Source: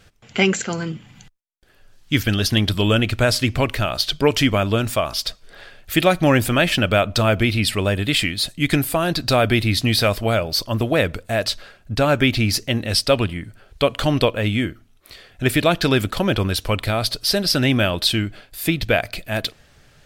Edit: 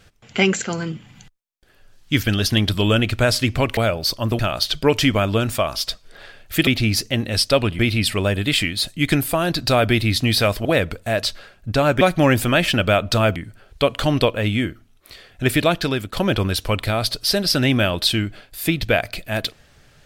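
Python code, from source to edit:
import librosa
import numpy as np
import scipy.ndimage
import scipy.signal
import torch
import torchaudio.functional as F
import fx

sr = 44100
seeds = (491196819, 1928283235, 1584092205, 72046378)

y = fx.edit(x, sr, fx.swap(start_s=6.05, length_s=1.35, other_s=12.24, other_length_s=1.12),
    fx.move(start_s=10.26, length_s=0.62, to_s=3.77),
    fx.fade_out_to(start_s=15.63, length_s=0.5, floor_db=-11.0), tone=tone)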